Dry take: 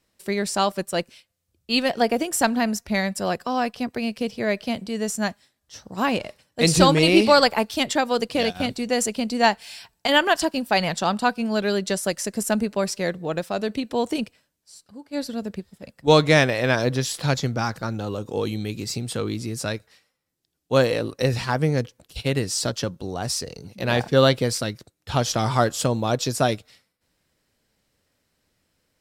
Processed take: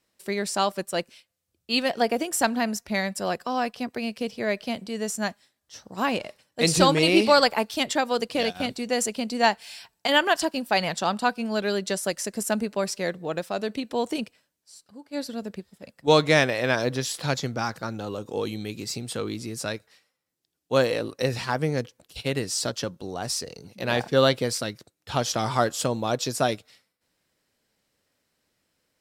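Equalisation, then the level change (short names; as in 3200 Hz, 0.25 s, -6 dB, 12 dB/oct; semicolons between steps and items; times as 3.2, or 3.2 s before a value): low shelf 120 Hz -10 dB; -2.0 dB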